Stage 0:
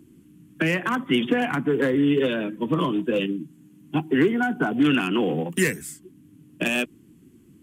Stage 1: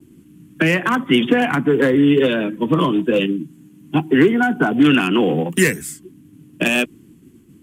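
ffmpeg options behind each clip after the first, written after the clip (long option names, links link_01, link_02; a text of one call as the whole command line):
ffmpeg -i in.wav -af "agate=range=-33dB:threshold=-50dB:ratio=3:detection=peak,volume=6.5dB" out.wav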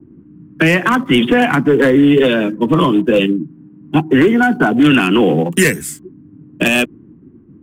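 ffmpeg -i in.wav -filter_complex "[0:a]apsyclip=9.5dB,acrossover=split=1500[link_01][link_02];[link_02]aeval=exprs='sgn(val(0))*max(abs(val(0))-0.00708,0)':channel_layout=same[link_03];[link_01][link_03]amix=inputs=2:normalize=0,volume=-4.5dB" out.wav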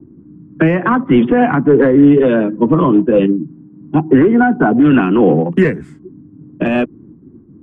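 ffmpeg -i in.wav -af "lowpass=1200,tremolo=f=3.4:d=0.28,volume=3dB" out.wav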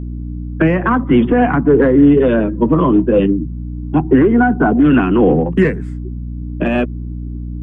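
ffmpeg -i in.wav -af "aeval=exprs='val(0)+0.0794*(sin(2*PI*60*n/s)+sin(2*PI*2*60*n/s)/2+sin(2*PI*3*60*n/s)/3+sin(2*PI*4*60*n/s)/4+sin(2*PI*5*60*n/s)/5)':channel_layout=same,volume=-1dB" out.wav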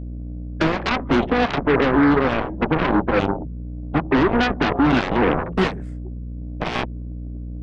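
ffmpeg -i in.wav -af "aeval=exprs='0.841*(cos(1*acos(clip(val(0)/0.841,-1,1)))-cos(1*PI/2))+0.299*(cos(7*acos(clip(val(0)/0.841,-1,1)))-cos(7*PI/2))':channel_layout=same,volume=-8.5dB" out.wav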